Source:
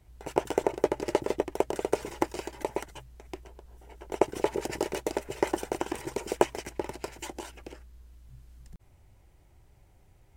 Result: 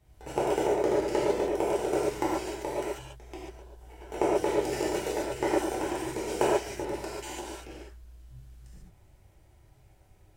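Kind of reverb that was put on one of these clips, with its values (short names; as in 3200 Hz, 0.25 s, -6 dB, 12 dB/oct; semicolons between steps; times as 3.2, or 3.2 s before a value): non-linear reverb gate 0.17 s flat, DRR -7 dB; gain -6 dB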